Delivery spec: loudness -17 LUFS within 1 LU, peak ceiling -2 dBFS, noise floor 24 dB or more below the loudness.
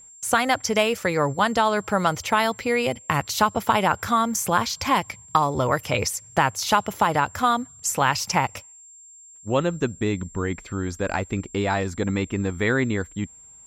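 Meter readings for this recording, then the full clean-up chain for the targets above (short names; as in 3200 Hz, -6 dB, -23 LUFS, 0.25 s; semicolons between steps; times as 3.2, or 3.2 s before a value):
steady tone 7400 Hz; tone level -45 dBFS; loudness -23.5 LUFS; peak -5.5 dBFS; loudness target -17.0 LUFS
-> notch 7400 Hz, Q 30; gain +6.5 dB; limiter -2 dBFS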